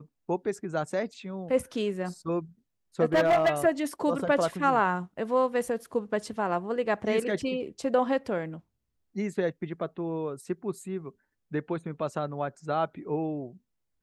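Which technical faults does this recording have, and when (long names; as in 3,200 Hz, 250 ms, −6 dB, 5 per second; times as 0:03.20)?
0:03.14–0:03.51: clipping −18 dBFS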